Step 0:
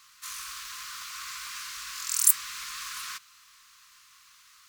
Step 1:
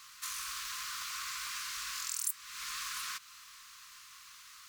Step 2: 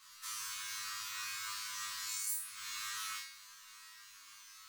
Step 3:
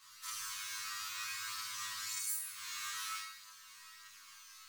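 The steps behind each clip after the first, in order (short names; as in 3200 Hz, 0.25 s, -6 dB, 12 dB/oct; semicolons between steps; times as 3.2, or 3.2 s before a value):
compressor 3:1, threshold -41 dBFS, peak gain reduction 20.5 dB; gain +3 dB
resonator 100 Hz, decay 0.38 s, harmonics all, mix 100%; on a send: flutter echo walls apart 4.6 m, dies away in 0.51 s; on the sum: gain +5.5 dB
reverb RT60 0.70 s, pre-delay 35 ms, DRR 11.5 dB; flange 0.53 Hz, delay 8.8 ms, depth 3.9 ms, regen +46%; gain +3.5 dB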